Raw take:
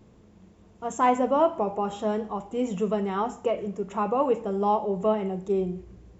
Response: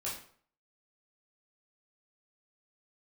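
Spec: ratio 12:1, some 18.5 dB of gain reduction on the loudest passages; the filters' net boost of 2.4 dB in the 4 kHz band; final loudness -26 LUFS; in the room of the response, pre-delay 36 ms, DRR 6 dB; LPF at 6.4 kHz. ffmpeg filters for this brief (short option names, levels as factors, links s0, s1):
-filter_complex "[0:a]lowpass=6400,equalizer=f=4000:t=o:g=4,acompressor=threshold=0.0158:ratio=12,asplit=2[s0][s1];[1:a]atrim=start_sample=2205,adelay=36[s2];[s1][s2]afir=irnorm=-1:irlink=0,volume=0.398[s3];[s0][s3]amix=inputs=2:normalize=0,volume=5.01"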